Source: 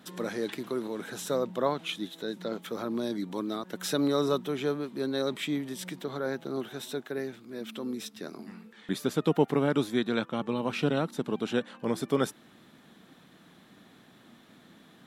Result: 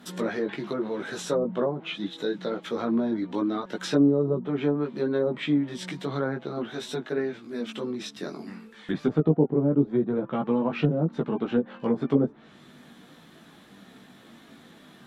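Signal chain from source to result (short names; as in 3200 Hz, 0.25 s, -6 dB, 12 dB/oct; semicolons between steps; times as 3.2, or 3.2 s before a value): treble ducked by the level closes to 440 Hz, closed at -23 dBFS; chorus voices 4, 0.17 Hz, delay 17 ms, depth 4.3 ms; gain +8 dB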